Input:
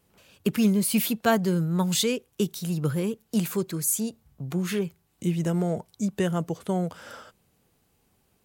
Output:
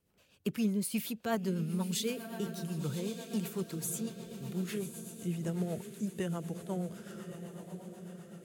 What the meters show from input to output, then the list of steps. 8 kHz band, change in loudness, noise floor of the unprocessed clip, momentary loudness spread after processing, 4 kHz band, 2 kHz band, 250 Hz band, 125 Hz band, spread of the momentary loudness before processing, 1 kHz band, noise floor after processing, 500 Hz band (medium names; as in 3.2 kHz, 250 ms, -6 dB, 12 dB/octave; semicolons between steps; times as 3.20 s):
-10.5 dB, -10.0 dB, -69 dBFS, 12 LU, -10.0 dB, -11.0 dB, -9.0 dB, -9.0 dB, 10 LU, -11.5 dB, -65 dBFS, -9.5 dB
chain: echo that smears into a reverb 1092 ms, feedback 55%, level -9 dB; rotary cabinet horn 8 Hz; trim -8.5 dB